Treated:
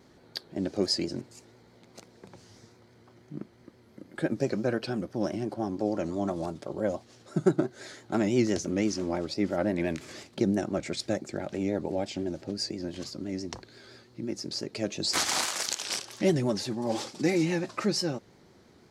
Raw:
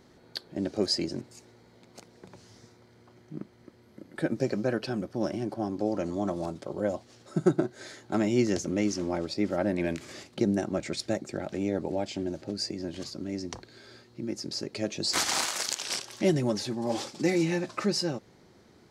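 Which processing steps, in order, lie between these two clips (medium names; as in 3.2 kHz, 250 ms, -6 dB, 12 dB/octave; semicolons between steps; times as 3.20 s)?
vibrato 5.9 Hz 72 cents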